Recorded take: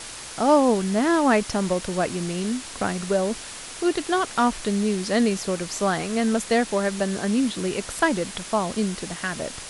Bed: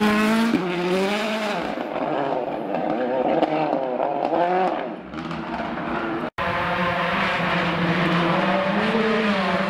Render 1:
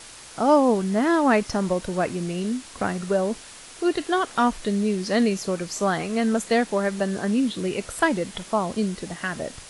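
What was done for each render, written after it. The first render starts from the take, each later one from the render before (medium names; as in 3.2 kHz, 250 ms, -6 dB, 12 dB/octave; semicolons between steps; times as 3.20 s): noise print and reduce 6 dB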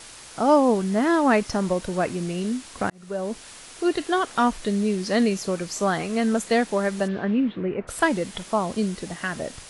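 2.90–3.48 s: fade in; 7.07–7.87 s: low-pass 4 kHz -> 1.7 kHz 24 dB/octave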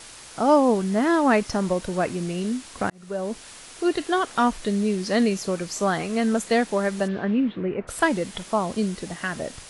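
no audible change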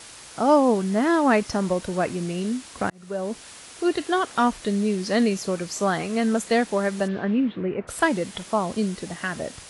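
high-pass 43 Hz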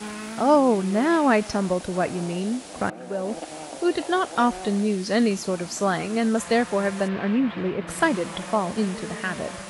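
add bed -16 dB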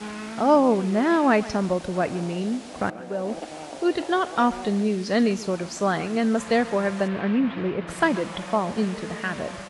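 distance through air 52 m; delay 137 ms -18.5 dB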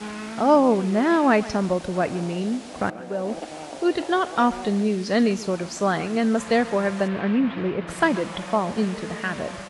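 trim +1 dB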